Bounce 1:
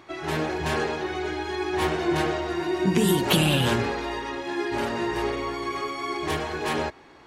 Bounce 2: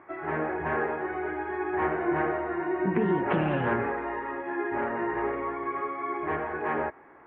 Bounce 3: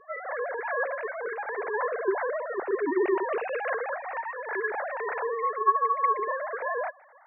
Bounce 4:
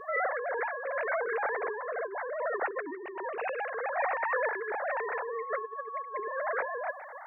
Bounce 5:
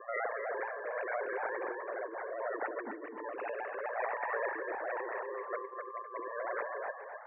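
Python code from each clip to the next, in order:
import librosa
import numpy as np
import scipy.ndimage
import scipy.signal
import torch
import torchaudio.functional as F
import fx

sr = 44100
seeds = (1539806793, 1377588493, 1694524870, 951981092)

y1 = scipy.signal.sosfilt(scipy.signal.butter(6, 2000.0, 'lowpass', fs=sr, output='sos'), x)
y1 = fx.low_shelf(y1, sr, hz=200.0, db=-11.5)
y2 = fx.sine_speech(y1, sr)
y3 = fx.over_compress(y2, sr, threshold_db=-38.0, ratio=-1.0)
y3 = y3 * librosa.db_to_amplitude(3.5)
y4 = y3 * np.sin(2.0 * np.pi * 58.0 * np.arange(len(y3)) / sr)
y4 = fx.cabinet(y4, sr, low_hz=120.0, low_slope=24, high_hz=2600.0, hz=(120.0, 260.0, 570.0), db=(-6, 4, 3))
y4 = fx.echo_feedback(y4, sr, ms=255, feedback_pct=20, wet_db=-8)
y4 = y4 * librosa.db_to_amplitude(-3.5)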